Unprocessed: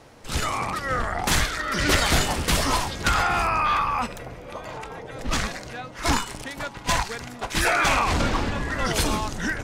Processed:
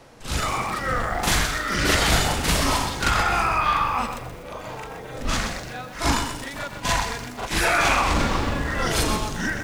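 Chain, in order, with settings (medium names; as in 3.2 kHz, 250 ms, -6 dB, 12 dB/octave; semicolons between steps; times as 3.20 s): reverse echo 40 ms -3.5 dB; bit-crushed delay 126 ms, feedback 35%, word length 7-bit, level -8 dB; trim -1 dB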